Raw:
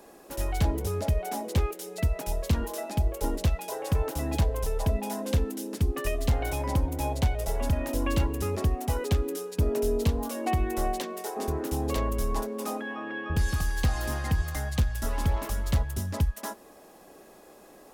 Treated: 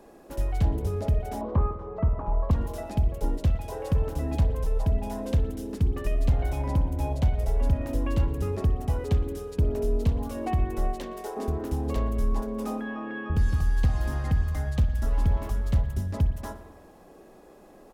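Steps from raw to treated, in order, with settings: tilt EQ -2 dB/octave; delay 117 ms -22.5 dB; in parallel at -1 dB: compression, threshold -26 dBFS, peak gain reduction 13.5 dB; 1.41–2.51 s: on the sum: resonant low-pass 1.1 kHz, resonance Q 6.1; spring tank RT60 1.2 s, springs 50 ms, chirp 20 ms, DRR 9.5 dB; trim -7.5 dB

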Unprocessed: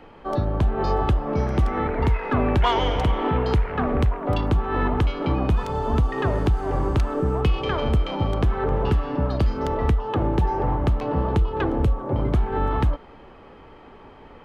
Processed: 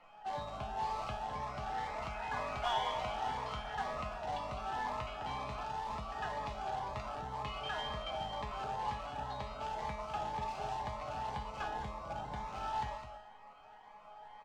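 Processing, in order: resonant low shelf 530 Hz -12 dB, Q 3; hum notches 50/100 Hz; short-mantissa float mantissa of 2-bit; flange 0.5 Hz, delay 5.8 ms, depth 2.7 ms, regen +58%; feedback comb 210 Hz, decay 0.7 s, harmonics all, mix 90%; in parallel at -10.5 dB: integer overflow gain 42 dB; on the sum: distance through air 130 m; on a send: delay 208 ms -9 dB; on the sum: Shepard-style phaser rising 2 Hz; trim +9 dB

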